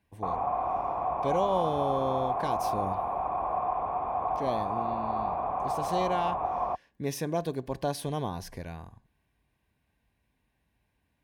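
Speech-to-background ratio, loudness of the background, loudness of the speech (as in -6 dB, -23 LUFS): -2.5 dB, -31.0 LUFS, -33.5 LUFS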